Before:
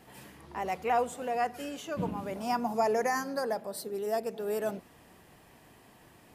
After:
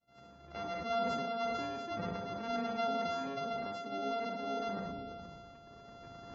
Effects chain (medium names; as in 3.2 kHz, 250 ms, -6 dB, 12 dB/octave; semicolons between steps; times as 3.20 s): sorted samples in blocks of 64 samples; recorder AGC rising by 10 dB/s; low-pass 5.3 kHz 12 dB/octave; feedback echo behind a low-pass 502 ms, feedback 34%, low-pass 450 Hz, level -18.5 dB; expander -47 dBFS; spectral gate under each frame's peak -25 dB strong; reverberation RT60 0.35 s, pre-delay 29 ms, DRR 6.5 dB; decay stretcher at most 21 dB/s; trim -8.5 dB